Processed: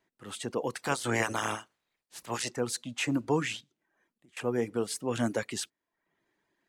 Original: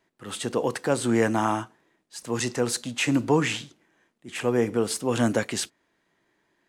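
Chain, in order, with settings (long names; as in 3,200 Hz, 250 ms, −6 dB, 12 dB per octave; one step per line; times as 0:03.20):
0:00.76–0:02.49: ceiling on every frequency bin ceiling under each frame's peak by 18 dB
reverb reduction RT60 0.57 s
0:03.60–0:04.37: downward compressor 20 to 1, threshold −54 dBFS, peak gain reduction 22 dB
level −6 dB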